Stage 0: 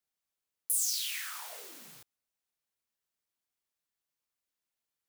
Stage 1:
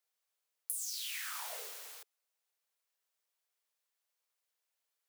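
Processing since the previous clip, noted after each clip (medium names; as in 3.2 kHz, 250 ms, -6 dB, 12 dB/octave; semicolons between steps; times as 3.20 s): compression 8:1, threshold -39 dBFS, peak gain reduction 13 dB; steep high-pass 410 Hz 72 dB/octave; trim +2.5 dB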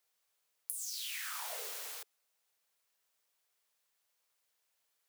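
compression 5:1, threshold -44 dBFS, peak gain reduction 10 dB; trim +6 dB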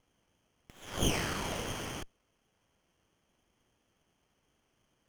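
resonant low-pass 3.2 kHz, resonance Q 11; sliding maximum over 9 samples; trim +4.5 dB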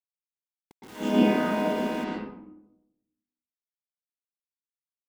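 vocoder on a held chord minor triad, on G#3; word length cut 8-bit, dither none; reverberation RT60 0.80 s, pre-delay 111 ms, DRR -11.5 dB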